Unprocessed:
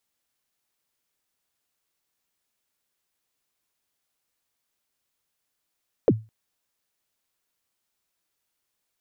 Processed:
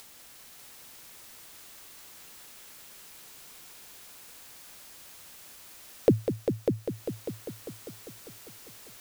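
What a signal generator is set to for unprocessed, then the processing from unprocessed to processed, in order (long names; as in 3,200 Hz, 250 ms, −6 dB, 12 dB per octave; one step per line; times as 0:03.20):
synth kick length 0.21 s, from 570 Hz, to 110 Hz, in 45 ms, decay 0.27 s, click off, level −10 dB
upward compression, threshold −29 dBFS
on a send: echo machine with several playback heads 199 ms, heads all three, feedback 54%, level −9 dB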